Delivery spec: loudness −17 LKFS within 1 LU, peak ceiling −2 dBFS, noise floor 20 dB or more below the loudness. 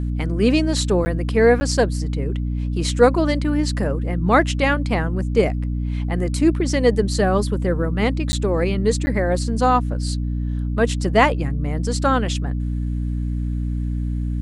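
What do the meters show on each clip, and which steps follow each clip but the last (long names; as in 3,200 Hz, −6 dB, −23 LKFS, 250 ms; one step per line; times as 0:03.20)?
number of dropouts 4; longest dropout 10 ms; mains hum 60 Hz; hum harmonics up to 300 Hz; level of the hum −20 dBFS; integrated loudness −20.5 LKFS; sample peak −1.5 dBFS; target loudness −17.0 LKFS
→ repair the gap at 0:01.05/0:01.60/0:08.32/0:09.06, 10 ms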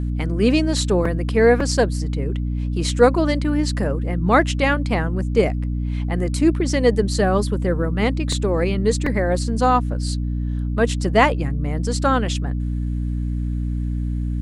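number of dropouts 0; mains hum 60 Hz; hum harmonics up to 300 Hz; level of the hum −20 dBFS
→ mains-hum notches 60/120/180/240/300 Hz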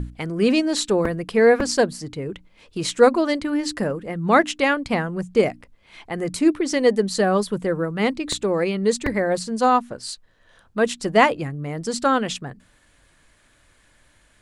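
mains hum none found; integrated loudness −21.0 LKFS; sample peak −1.5 dBFS; target loudness −17.0 LKFS
→ level +4 dB
brickwall limiter −2 dBFS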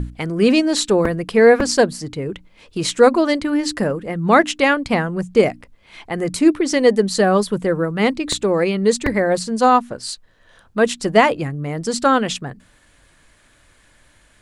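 integrated loudness −17.5 LKFS; sample peak −2.0 dBFS; background noise floor −55 dBFS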